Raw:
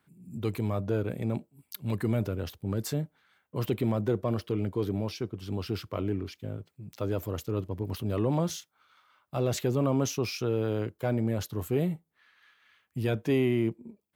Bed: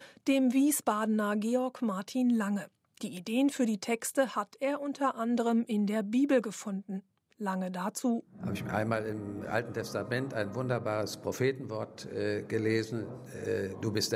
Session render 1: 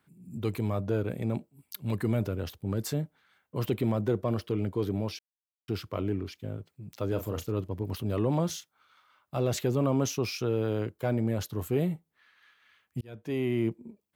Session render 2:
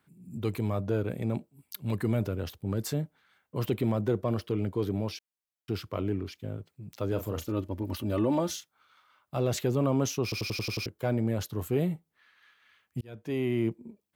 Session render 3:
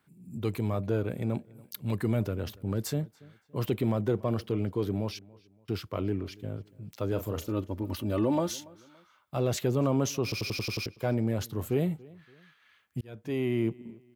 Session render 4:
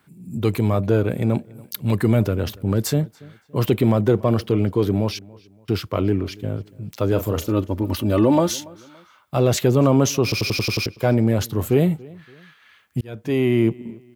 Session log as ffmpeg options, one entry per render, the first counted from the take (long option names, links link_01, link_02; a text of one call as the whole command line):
ffmpeg -i in.wav -filter_complex "[0:a]asettb=1/sr,asplit=3[link_01][link_02][link_03];[link_01]atrim=end=7.084[link_04];[link_02]atrim=start=7.08:end=7.52,asetpts=PTS-STARTPTS,afade=type=in:duration=0.004:curve=qsin,afade=type=out:start_time=0.436:duration=0.004:curve=qsin,asplit=2[link_05][link_06];[link_06]adelay=36,volume=-9dB[link_07];[link_05][link_07]amix=inputs=2:normalize=0,atrim=end_sample=19404[link_08];[link_03]atrim=start=7.516[link_09];[link_04][link_08]acrossfade=duration=0.004:curve1=hsin:curve2=qsin[link_10];[link_10][link_09]acrossfade=duration=0.004:curve1=qsin:curve2=hsin,asplit=4[link_11][link_12][link_13][link_14];[link_11]atrim=end=5.19,asetpts=PTS-STARTPTS,afade=type=out:start_time=5.186:duration=0.004:curve=hsin[link_15];[link_12]atrim=start=5.19:end=5.68,asetpts=PTS-STARTPTS,volume=0[link_16];[link_13]atrim=start=5.68:end=13.01,asetpts=PTS-STARTPTS,afade=type=in:duration=0.004:curve=hsin,afade=type=out:start_time=7.326:duration=0.004:curve=hsin[link_17];[link_14]atrim=start=13.01,asetpts=PTS-STARTPTS,afade=type=in:duration=0.67[link_18];[link_15][link_16][link_17][link_18]concat=n=4:v=0:a=1" out.wav
ffmpeg -i in.wav -filter_complex "[0:a]asettb=1/sr,asplit=3[link_01][link_02][link_03];[link_01]atrim=end=7.414[link_04];[link_02]atrim=start=7.41:end=8.56,asetpts=PTS-STARTPTS,afade=type=in:duration=0.004:curve=qsin,afade=type=out:start_time=1.146:duration=0.004:curve=qsin,aecho=1:1:3.4:0.65,atrim=end_sample=50715[link_05];[link_03]atrim=start=8.556[link_06];[link_04][link_05]acrossfade=duration=0.004:curve1=hsin:curve2=qsin[link_07];[link_07][link_06]acrossfade=duration=0.004:curve1=qsin:curve2=hsin,asplit=8[link_08][link_09][link_10][link_11][link_12][link_13][link_14][link_15];[link_08]atrim=end=10.322[link_16];[link_09]atrim=start=10.228:end=10.322[link_17];[link_10]atrim=start=10.228:end=10.322[link_18];[link_11]atrim=start=10.228:end=10.322[link_19];[link_12]atrim=start=10.228:end=10.322[link_20];[link_13]atrim=start=10.228:end=10.322[link_21];[link_14]atrim=start=10.228:end=10.322[link_22];[link_15]atrim=start=10.858[link_23];[link_16][link_17]acrossfade=duration=0.004:curve1=hsin:curve2=hsin[link_24];[link_24][link_18]acrossfade=duration=0.004:curve1=hsin:curve2=hsin[link_25];[link_25][link_19]acrossfade=duration=0.004:curve1=hsin:curve2=hsin[link_26];[link_26][link_20]acrossfade=duration=0.004:curve1=hsin:curve2=hsin[link_27];[link_27][link_21]acrossfade=duration=0.004:curve1=hsin:curve2=hsin[link_28];[link_28][link_22]acrossfade=duration=0.004:curve1=hsin:curve2=hsin[link_29];[link_29][link_23]acrossfade=duration=0.004:curve1=hsin:curve2=hsin" out.wav
ffmpeg -i in.wav -filter_complex "[0:a]asplit=2[link_01][link_02];[link_02]adelay=284,lowpass=frequency=4400:poles=1,volume=-23dB,asplit=2[link_03][link_04];[link_04]adelay=284,lowpass=frequency=4400:poles=1,volume=0.37[link_05];[link_01][link_03][link_05]amix=inputs=3:normalize=0" out.wav
ffmpeg -i in.wav -af "volume=10.5dB" out.wav